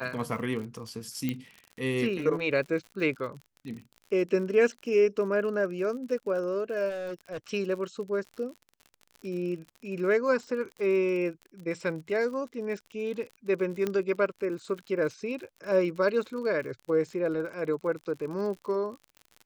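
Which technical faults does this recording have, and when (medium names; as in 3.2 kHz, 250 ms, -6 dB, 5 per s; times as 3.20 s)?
crackle 59 per s -38 dBFS
1.29 s: pop -17 dBFS
6.89–7.38 s: clipped -32.5 dBFS
13.87 s: pop -16 dBFS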